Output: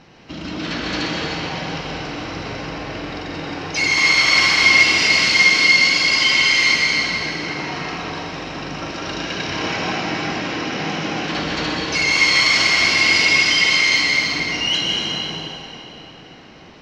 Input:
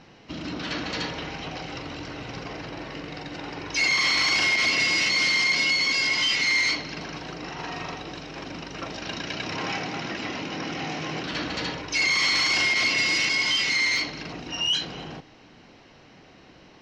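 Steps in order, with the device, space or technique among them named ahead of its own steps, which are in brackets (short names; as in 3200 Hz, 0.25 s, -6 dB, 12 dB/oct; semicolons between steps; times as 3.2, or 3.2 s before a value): tunnel (flutter echo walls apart 9.3 m, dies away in 0.29 s; reverb RT60 3.3 s, pre-delay 0.112 s, DRR -3 dB); gain +3 dB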